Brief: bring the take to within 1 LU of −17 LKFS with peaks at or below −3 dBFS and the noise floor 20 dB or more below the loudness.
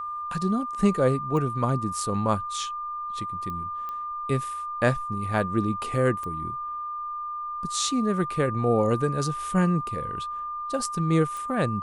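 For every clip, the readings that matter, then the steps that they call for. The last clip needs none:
number of clicks 5; interfering tone 1,200 Hz; level of the tone −30 dBFS; integrated loudness −27.0 LKFS; sample peak −8.0 dBFS; target loudness −17.0 LKFS
→ click removal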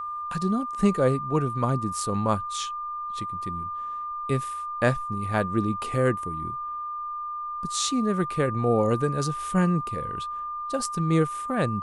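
number of clicks 0; interfering tone 1,200 Hz; level of the tone −30 dBFS
→ notch filter 1,200 Hz, Q 30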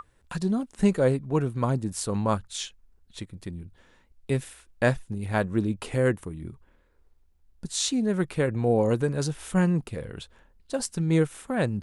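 interfering tone none found; integrated loudness −27.0 LKFS; sample peak −8.5 dBFS; target loudness −17.0 LKFS
→ level +10 dB
brickwall limiter −3 dBFS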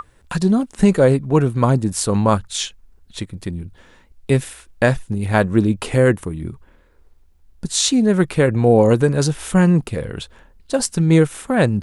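integrated loudness −17.5 LKFS; sample peak −3.0 dBFS; background noise floor −53 dBFS

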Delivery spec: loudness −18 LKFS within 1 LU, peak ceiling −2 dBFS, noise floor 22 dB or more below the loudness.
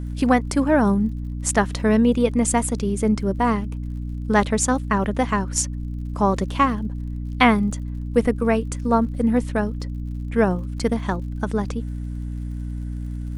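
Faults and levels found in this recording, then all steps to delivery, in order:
crackle rate 54 per second; mains hum 60 Hz; hum harmonics up to 300 Hz; level of the hum −26 dBFS; integrated loudness −22.0 LKFS; sample peak −1.5 dBFS; target loudness −18.0 LKFS
→ click removal
hum removal 60 Hz, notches 5
level +4 dB
brickwall limiter −2 dBFS

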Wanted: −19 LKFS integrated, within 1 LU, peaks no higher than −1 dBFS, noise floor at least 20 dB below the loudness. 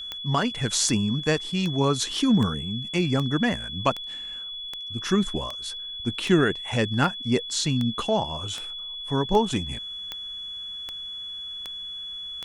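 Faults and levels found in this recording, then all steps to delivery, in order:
number of clicks 17; interfering tone 3,400 Hz; level of the tone −33 dBFS; integrated loudness −26.0 LKFS; sample peak −6.0 dBFS; target loudness −19.0 LKFS
→ click removal
notch filter 3,400 Hz, Q 30
level +7 dB
brickwall limiter −1 dBFS

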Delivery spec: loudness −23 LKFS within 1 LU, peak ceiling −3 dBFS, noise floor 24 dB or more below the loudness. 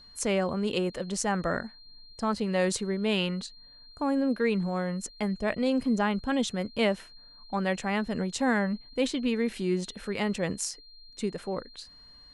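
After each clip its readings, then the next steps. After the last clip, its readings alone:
interfering tone 4,200 Hz; level of the tone −51 dBFS; integrated loudness −29.5 LKFS; sample peak −12.5 dBFS; target loudness −23.0 LKFS
→ notch filter 4,200 Hz, Q 30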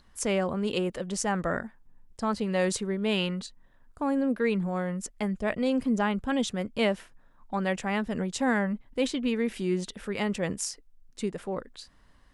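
interfering tone none found; integrated loudness −29.5 LKFS; sample peak −12.5 dBFS; target loudness −23.0 LKFS
→ level +6.5 dB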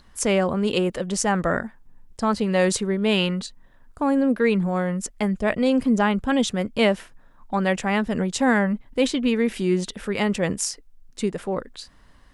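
integrated loudness −23.0 LKFS; sample peak −6.0 dBFS; background noise floor −52 dBFS

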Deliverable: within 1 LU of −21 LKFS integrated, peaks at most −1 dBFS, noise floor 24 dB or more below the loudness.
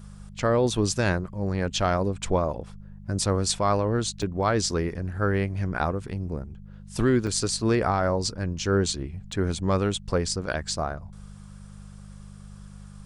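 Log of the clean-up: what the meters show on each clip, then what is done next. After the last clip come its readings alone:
number of dropouts 3; longest dropout 3.3 ms; mains hum 50 Hz; hum harmonics up to 200 Hz; level of the hum −42 dBFS; integrated loudness −26.0 LKFS; sample peak −7.0 dBFS; target loudness −21.0 LKFS
→ repair the gap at 0:04.22/0:07.27/0:09.32, 3.3 ms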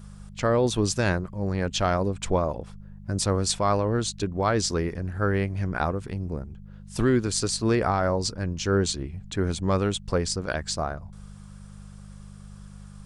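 number of dropouts 0; mains hum 50 Hz; hum harmonics up to 200 Hz; level of the hum −42 dBFS
→ hum removal 50 Hz, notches 4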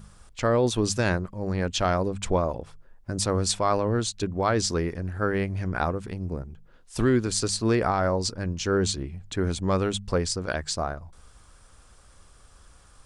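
mains hum none found; integrated loudness −26.5 LKFS; sample peak −7.0 dBFS; target loudness −21.0 LKFS
→ level +5.5 dB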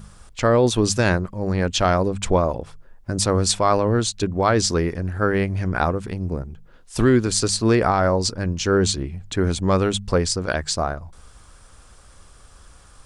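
integrated loudness −21.0 LKFS; sample peak −1.5 dBFS; background noise floor −49 dBFS

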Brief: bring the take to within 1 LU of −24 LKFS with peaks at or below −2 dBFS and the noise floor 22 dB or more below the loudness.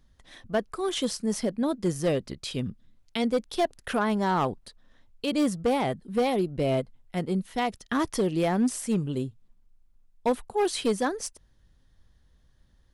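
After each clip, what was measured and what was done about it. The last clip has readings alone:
share of clipped samples 0.9%; peaks flattened at −18.5 dBFS; integrated loudness −28.5 LKFS; sample peak −18.5 dBFS; target loudness −24.0 LKFS
→ clipped peaks rebuilt −18.5 dBFS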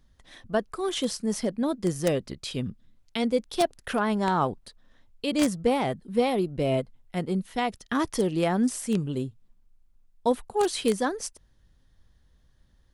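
share of clipped samples 0.0%; integrated loudness −28.0 LKFS; sample peak −9.5 dBFS; target loudness −24.0 LKFS
→ level +4 dB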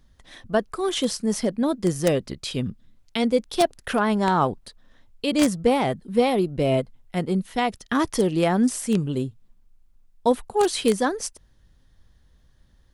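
integrated loudness −24.0 LKFS; sample peak −5.5 dBFS; background noise floor −58 dBFS

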